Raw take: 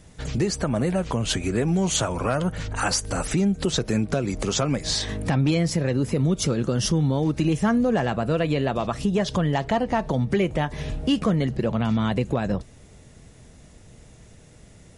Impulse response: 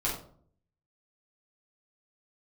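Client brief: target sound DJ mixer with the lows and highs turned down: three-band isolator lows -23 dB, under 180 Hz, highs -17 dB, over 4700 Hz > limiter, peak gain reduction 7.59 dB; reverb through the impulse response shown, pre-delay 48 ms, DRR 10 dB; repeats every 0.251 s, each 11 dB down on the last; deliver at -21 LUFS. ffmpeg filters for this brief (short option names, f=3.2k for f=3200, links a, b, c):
-filter_complex "[0:a]aecho=1:1:251|502|753:0.282|0.0789|0.0221,asplit=2[a][b];[1:a]atrim=start_sample=2205,adelay=48[c];[b][c]afir=irnorm=-1:irlink=0,volume=-17dB[d];[a][d]amix=inputs=2:normalize=0,acrossover=split=180 4700:gain=0.0708 1 0.141[e][f][g];[e][f][g]amix=inputs=3:normalize=0,volume=6.5dB,alimiter=limit=-10.5dB:level=0:latency=1"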